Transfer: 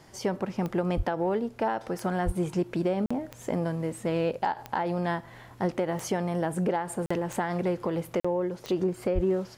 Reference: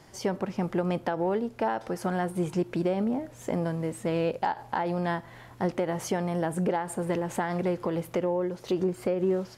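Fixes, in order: de-click; 0.96–1.08 s: high-pass 140 Hz 24 dB/octave; 2.25–2.37 s: high-pass 140 Hz 24 dB/octave; 9.14–9.26 s: high-pass 140 Hz 24 dB/octave; interpolate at 3.06/7.06/8.20 s, 45 ms

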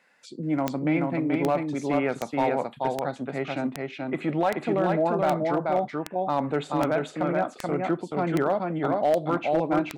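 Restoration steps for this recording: clip repair -15.5 dBFS; de-click; inverse comb 431 ms -3 dB

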